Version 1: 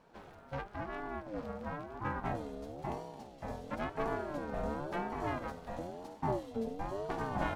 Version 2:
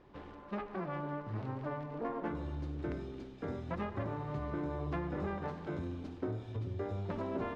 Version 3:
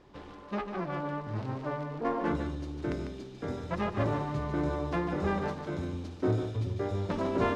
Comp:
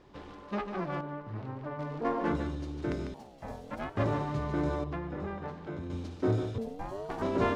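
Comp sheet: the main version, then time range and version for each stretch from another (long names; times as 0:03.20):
3
0:01.01–0:01.79: punch in from 2
0:03.14–0:03.97: punch in from 1
0:04.84–0:05.90: punch in from 2
0:06.58–0:07.22: punch in from 1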